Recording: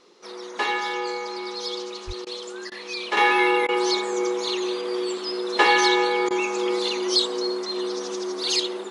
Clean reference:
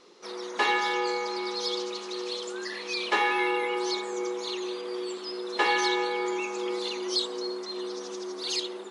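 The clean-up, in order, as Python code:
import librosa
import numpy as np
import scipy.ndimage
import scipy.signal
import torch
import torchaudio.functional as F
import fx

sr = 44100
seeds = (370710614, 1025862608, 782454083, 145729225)

y = fx.fix_deplosive(x, sr, at_s=(2.06,))
y = fx.fix_interpolate(y, sr, at_s=(2.25, 2.7, 3.67, 6.29), length_ms=15.0)
y = fx.fix_level(y, sr, at_s=3.17, step_db=-7.0)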